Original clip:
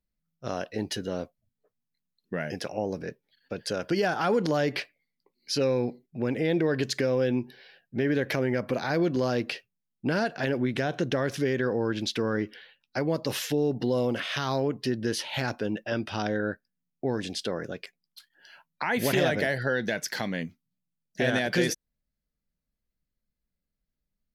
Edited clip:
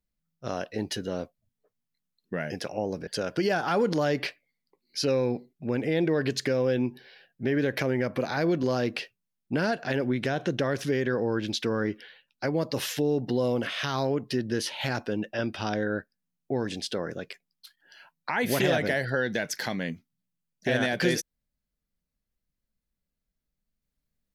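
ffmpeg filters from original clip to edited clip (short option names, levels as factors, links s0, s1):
-filter_complex "[0:a]asplit=2[s0][s1];[s0]atrim=end=3.072[s2];[s1]atrim=start=3.598[s3];[s2][s3]acrossfade=d=0.004:c1=hsin:c2=hsin"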